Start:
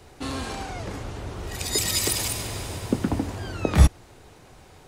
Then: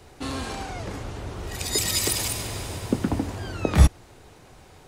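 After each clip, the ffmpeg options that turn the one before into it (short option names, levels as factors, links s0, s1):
-af anull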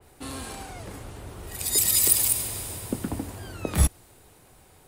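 -af "aeval=exprs='0.75*(cos(1*acos(clip(val(0)/0.75,-1,1)))-cos(1*PI/2))+0.0376*(cos(4*acos(clip(val(0)/0.75,-1,1)))-cos(4*PI/2))':c=same,aexciter=amount=4.5:drive=3.2:freq=8300,adynamicequalizer=threshold=0.0158:dfrequency=3000:dqfactor=0.7:tfrequency=3000:tqfactor=0.7:attack=5:release=100:ratio=0.375:range=2:mode=boostabove:tftype=highshelf,volume=0.501"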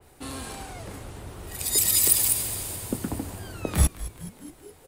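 -filter_complex "[0:a]asplit=7[s0][s1][s2][s3][s4][s5][s6];[s1]adelay=211,afreqshift=-120,volume=0.168[s7];[s2]adelay=422,afreqshift=-240,volume=0.104[s8];[s3]adelay=633,afreqshift=-360,volume=0.0646[s9];[s4]adelay=844,afreqshift=-480,volume=0.0398[s10];[s5]adelay=1055,afreqshift=-600,volume=0.0248[s11];[s6]adelay=1266,afreqshift=-720,volume=0.0153[s12];[s0][s7][s8][s9][s10][s11][s12]amix=inputs=7:normalize=0"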